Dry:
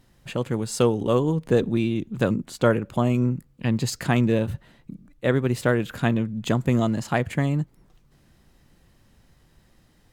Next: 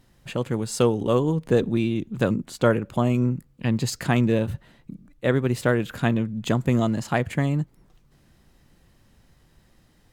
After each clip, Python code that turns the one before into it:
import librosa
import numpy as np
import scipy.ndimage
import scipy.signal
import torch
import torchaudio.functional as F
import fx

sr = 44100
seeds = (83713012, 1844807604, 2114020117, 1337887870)

y = x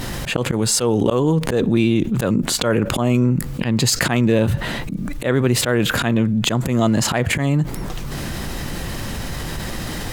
y = fx.low_shelf(x, sr, hz=330.0, db=-3.5)
y = fx.auto_swell(y, sr, attack_ms=181.0)
y = fx.env_flatten(y, sr, amount_pct=70)
y = F.gain(torch.from_numpy(y), 6.0).numpy()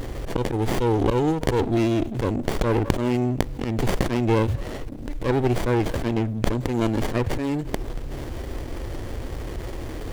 y = fx.fixed_phaser(x, sr, hz=440.0, stages=4)
y = fx.running_max(y, sr, window=33)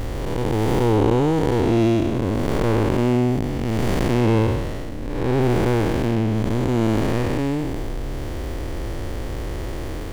y = fx.spec_blur(x, sr, span_ms=293.0)
y = F.gain(torch.from_numpy(y), 5.5).numpy()